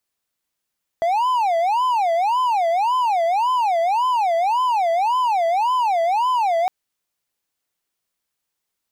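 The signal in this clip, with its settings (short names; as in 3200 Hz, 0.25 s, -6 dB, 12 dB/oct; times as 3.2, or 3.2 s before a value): siren wail 663–1020 Hz 1.8/s triangle -14 dBFS 5.66 s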